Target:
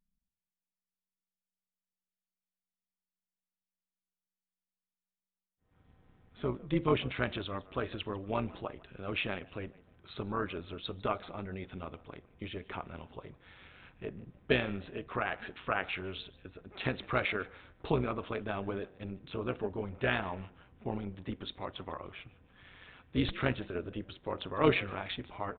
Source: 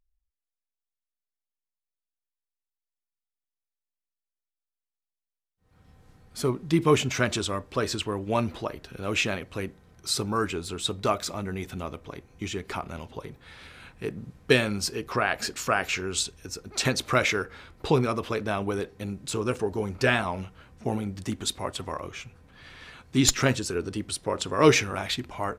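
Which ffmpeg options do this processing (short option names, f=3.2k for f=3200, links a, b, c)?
-filter_complex "[0:a]asplit=3[a][b][c];[b]adelay=150,afreqshift=70,volume=-22.5dB[d];[c]adelay=300,afreqshift=140,volume=-32.1dB[e];[a][d][e]amix=inputs=3:normalize=0,tremolo=f=190:d=0.667,aresample=8000,aresample=44100,volume=-5dB"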